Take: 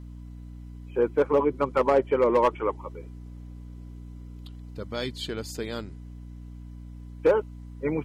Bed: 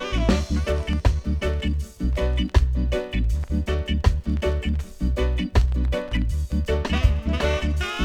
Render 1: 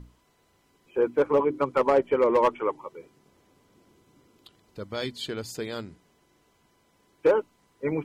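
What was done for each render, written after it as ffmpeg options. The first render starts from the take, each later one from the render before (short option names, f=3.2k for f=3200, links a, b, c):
-af "bandreject=f=60:t=h:w=6,bandreject=f=120:t=h:w=6,bandreject=f=180:t=h:w=6,bandreject=f=240:t=h:w=6,bandreject=f=300:t=h:w=6"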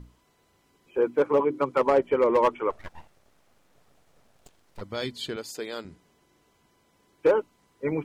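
-filter_complex "[0:a]asettb=1/sr,asplit=3[a][b][c];[a]atrim=end=0.984[d];[b]atrim=start=0.98:end=1.82,asetpts=PTS-STARTPTS,afade=t=in:d=0.004:c=qsin,afade=t=out:st=0.836:d=0.004:c=qsin,highpass=110[e];[c]atrim=start=1.816[f];[d][e]acrossfade=d=0.004:c1=hsin:c2=qsin[g];[g][f]acrossfade=d=0.004:c1=qsin:c2=hsin,asplit=3[h][i][j];[h]afade=t=out:st=2.7:d=0.02[k];[i]aeval=exprs='abs(val(0))':c=same,afade=t=in:st=2.7:d=0.02,afade=t=out:st=4.8:d=0.02[l];[j]afade=t=in:st=4.8:d=0.02[m];[k][l][m]amix=inputs=3:normalize=0,asettb=1/sr,asplit=3[n][o][p];[n]atrim=end=5.364[q];[o]atrim=start=5.36:end=5.85,asetpts=PTS-STARTPTS,afade=t=in:d=0.004:c=qsin,afade=t=out:st=0.486:d=0.004:c=qsin,highpass=300[r];[p]atrim=start=5.846[s];[q][r]acrossfade=d=0.004:c1=hsin:c2=qsin[t];[t][s]acrossfade=d=0.004:c1=qsin:c2=hsin"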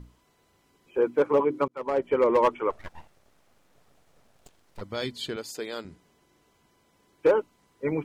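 -filter_complex "[0:a]asplit=2[a][b];[a]atrim=end=1.68,asetpts=PTS-STARTPTS,afade=t=out:st=1.676:d=0.004:c=hsin[c];[b]atrim=start=1.68,asetpts=PTS-STARTPTS,afade=t=in:d=0.49[d];[c][d]concat=n=2:v=0:a=1"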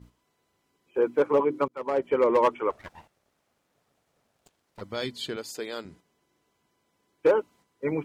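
-af "highpass=f=92:p=1,agate=range=-7dB:threshold=-53dB:ratio=16:detection=peak"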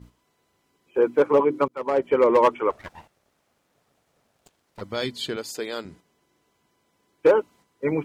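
-af "volume=4dB"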